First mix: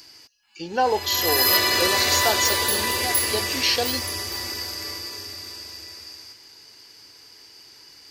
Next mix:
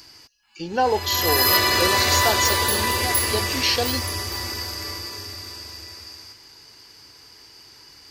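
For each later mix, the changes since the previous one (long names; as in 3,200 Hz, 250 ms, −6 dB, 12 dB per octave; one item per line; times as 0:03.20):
background: add parametric band 1,100 Hz +4 dB 1.1 octaves
master: add low-shelf EQ 160 Hz +10 dB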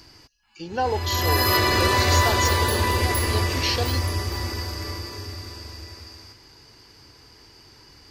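speech −4.0 dB
background: add spectral tilt −2 dB per octave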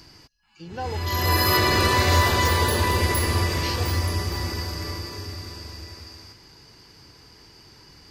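speech −8.0 dB
master: add parametric band 170 Hz +8 dB 0.42 octaves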